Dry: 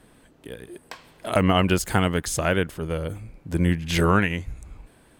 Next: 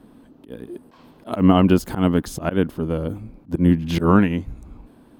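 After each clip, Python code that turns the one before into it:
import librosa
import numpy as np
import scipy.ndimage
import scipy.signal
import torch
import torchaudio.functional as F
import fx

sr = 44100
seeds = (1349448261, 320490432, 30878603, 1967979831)

y = fx.graphic_eq(x, sr, hz=(250, 1000, 2000, 8000), db=(12, 4, -7, -10))
y = fx.auto_swell(y, sr, attack_ms=101.0)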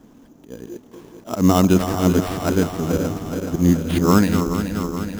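y = fx.reverse_delay_fb(x, sr, ms=213, feedback_pct=81, wet_db=-8.0)
y = fx.sample_hold(y, sr, seeds[0], rate_hz=6500.0, jitter_pct=0)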